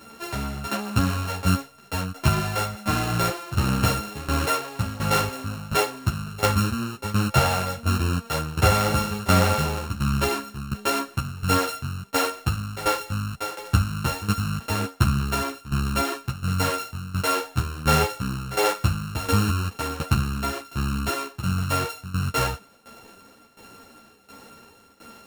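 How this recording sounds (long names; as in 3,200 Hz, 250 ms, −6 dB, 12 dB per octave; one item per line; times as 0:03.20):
a buzz of ramps at a fixed pitch in blocks of 32 samples
tremolo saw down 1.4 Hz, depth 85%
a shimmering, thickened sound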